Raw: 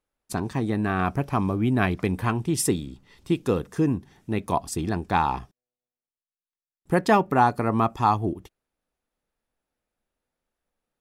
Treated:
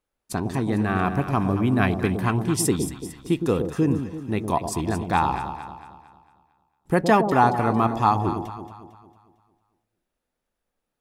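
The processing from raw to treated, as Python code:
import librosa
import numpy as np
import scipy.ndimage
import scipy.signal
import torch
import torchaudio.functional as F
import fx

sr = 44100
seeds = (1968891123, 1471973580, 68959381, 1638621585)

y = fx.echo_alternate(x, sr, ms=113, hz=800.0, feedback_pct=66, wet_db=-6.5)
y = F.gain(torch.from_numpy(y), 1.0).numpy()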